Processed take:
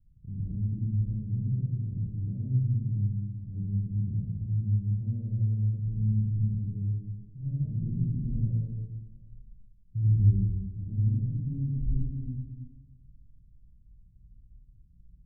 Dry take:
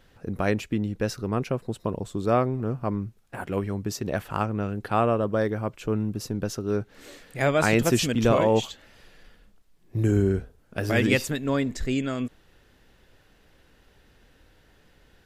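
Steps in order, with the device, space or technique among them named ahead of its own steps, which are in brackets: club heard from the street (peak limiter -14.5 dBFS, peak gain reduction 6.5 dB; low-pass 150 Hz 24 dB/octave; reverberation RT60 1.5 s, pre-delay 51 ms, DRR -6.5 dB); trim -3 dB

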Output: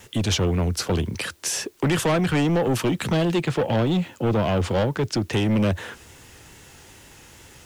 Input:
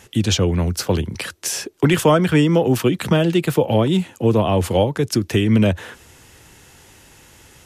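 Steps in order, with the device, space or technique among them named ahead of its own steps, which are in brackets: 3.42–5.33 s: low-pass 5.8 kHz 12 dB/octave; compact cassette (saturation -17 dBFS, distortion -9 dB; low-pass 11 kHz; wow and flutter; white noise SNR 37 dB)

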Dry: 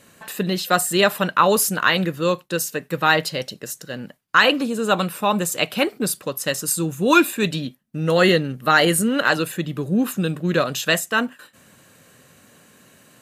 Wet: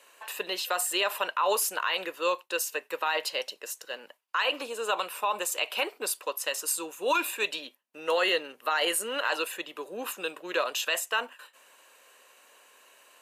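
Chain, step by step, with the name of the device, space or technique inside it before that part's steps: laptop speaker (high-pass 430 Hz 24 dB/octave; peaking EQ 970 Hz +9 dB 0.31 oct; peaking EQ 2.7 kHz +7 dB 0.39 oct; peak limiter -10.5 dBFS, peak gain reduction 12 dB); trim -6 dB

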